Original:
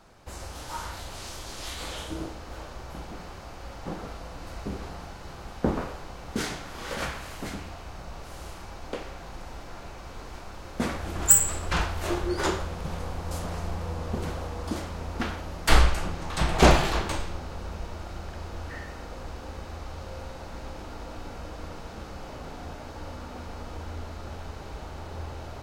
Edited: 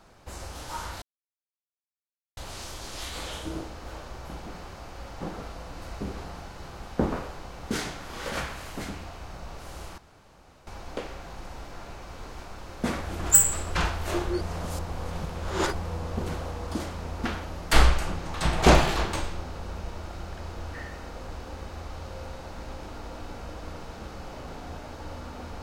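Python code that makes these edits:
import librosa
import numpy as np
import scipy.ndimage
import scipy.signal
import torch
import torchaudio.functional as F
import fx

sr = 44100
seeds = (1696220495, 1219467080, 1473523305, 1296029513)

y = fx.edit(x, sr, fx.insert_silence(at_s=1.02, length_s=1.35),
    fx.insert_room_tone(at_s=8.63, length_s=0.69),
    fx.reverse_span(start_s=12.37, length_s=1.32), tone=tone)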